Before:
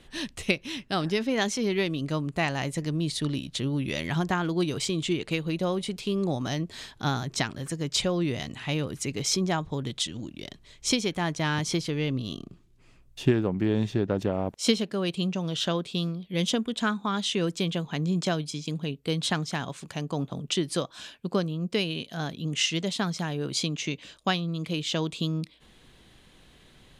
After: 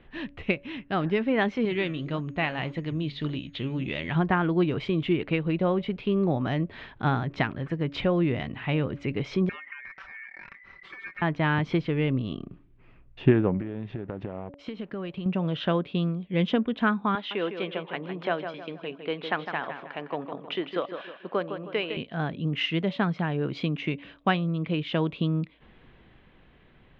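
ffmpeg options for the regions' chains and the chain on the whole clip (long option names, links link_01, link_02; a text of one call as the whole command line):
ffmpeg -i in.wav -filter_complex "[0:a]asettb=1/sr,asplit=3[link_01][link_02][link_03];[link_01]atrim=end=1.654[link_04];[link_02]atrim=start=1.65:end=4.15,asetpts=PTS-STARTPTS,afade=type=in:duration=0.004:curve=qsin,afade=type=out:start_time=2.496:duration=0.004:curve=qsin,equalizer=frequency=3600:width=1.3:gain=9,flanger=delay=2:depth=9:regen=-84:speed=1.7:shape=sinusoidal,aeval=exprs='val(0)+0.00355*sin(2*PI*6600*n/s)':channel_layout=same[link_05];[link_03]atrim=start=4.146[link_06];[link_04][link_05]acrossfade=duration=0.004:curve1=hsin:curve2=qsin[link_07];[link_07][link_06]acrossfade=duration=0.004:curve1=qsin:curve2=hsin,asettb=1/sr,asplit=3[link_08][link_09][link_10];[link_08]atrim=end=9.494[link_11];[link_09]atrim=start=9.49:end=11.22,asetpts=PTS-STARTPTS,afade=type=in:duration=0.004:curve=qsin,afade=type=out:start_time=1.726:duration=0.004:curve=qsin,acompressor=threshold=-40dB:ratio=6:attack=3.2:release=140:knee=1:detection=peak,aecho=1:1:5.1:0.89,atrim=end_sample=76293,aeval=exprs='val(0)*sin(2*PI*2000*n/s)':channel_layout=same[link_12];[link_10]atrim=start=11.216[link_13];[link_11][link_12]acrossfade=duration=0.004:curve1=hsin:curve2=qsin[link_14];[link_14][link_13]acrossfade=duration=0.004:curve1=qsin:curve2=hsin,asettb=1/sr,asplit=3[link_15][link_16][link_17];[link_15]atrim=end=13.604[link_18];[link_16]atrim=start=13.6:end=15.26,asetpts=PTS-STARTPTS,afade=type=in:duration=0.004:curve=qsin,afade=type=out:start_time=1.656:duration=0.004:curve=qsin,acompressor=threshold=-32dB:ratio=12:attack=3.2:release=140:knee=1:detection=peak,aeval=exprs='sgn(val(0))*max(abs(val(0))-0.00106,0)':channel_layout=same[link_19];[link_17]atrim=start=15.256[link_20];[link_18][link_19]acrossfade=duration=0.004:curve1=hsin:curve2=qsin[link_21];[link_21][link_20]acrossfade=duration=0.004:curve1=qsin:curve2=hsin,asettb=1/sr,asplit=3[link_22][link_23][link_24];[link_22]atrim=end=17.154[link_25];[link_23]atrim=start=17.15:end=21.97,asetpts=PTS-STARTPTS,afade=type=in:duration=0.004:curve=qsin,afade=type=out:start_time=4.816:duration=0.004:curve=qsin,highpass=430,lowpass=4700,asplit=2[link_26][link_27];[link_27]adelay=157,lowpass=frequency=3500:poles=1,volume=-8dB,asplit=2[link_28][link_29];[link_29]adelay=157,lowpass=frequency=3500:poles=1,volume=0.41,asplit=2[link_30][link_31];[link_31]adelay=157,lowpass=frequency=3500:poles=1,volume=0.41,asplit=2[link_32][link_33];[link_33]adelay=157,lowpass=frequency=3500:poles=1,volume=0.41,asplit=2[link_34][link_35];[link_35]adelay=157,lowpass=frequency=3500:poles=1,volume=0.41[link_36];[link_26][link_28][link_30][link_32][link_34][link_36]amix=inputs=6:normalize=0,atrim=end_sample=212562[link_37];[link_24]atrim=start=21.966[link_38];[link_25][link_37]acrossfade=duration=0.004:curve1=hsin:curve2=qsin[link_39];[link_39][link_38]acrossfade=duration=0.004:curve1=qsin:curve2=hsin,lowpass=frequency=2600:width=0.5412,lowpass=frequency=2600:width=1.3066,bandreject=frequency=284:width_type=h:width=4,bandreject=frequency=568:width_type=h:width=4,dynaudnorm=framelen=130:gausssize=17:maxgain=3dB" out.wav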